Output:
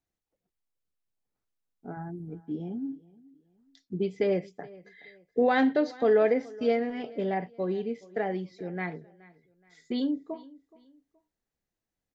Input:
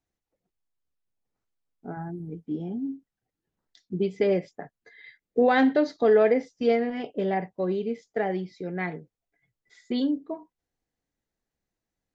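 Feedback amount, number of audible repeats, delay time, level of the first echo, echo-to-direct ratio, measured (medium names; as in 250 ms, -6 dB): 34%, 2, 423 ms, -22.0 dB, -21.5 dB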